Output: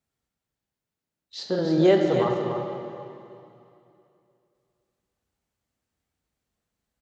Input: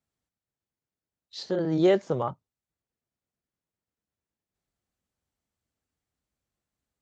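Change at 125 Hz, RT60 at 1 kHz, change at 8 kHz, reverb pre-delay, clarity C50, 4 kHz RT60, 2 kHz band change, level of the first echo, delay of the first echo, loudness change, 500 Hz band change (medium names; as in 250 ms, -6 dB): +4.0 dB, 2.7 s, no reading, 6 ms, 1.5 dB, 2.5 s, +4.5 dB, -7.5 dB, 291 ms, +2.5 dB, +4.5 dB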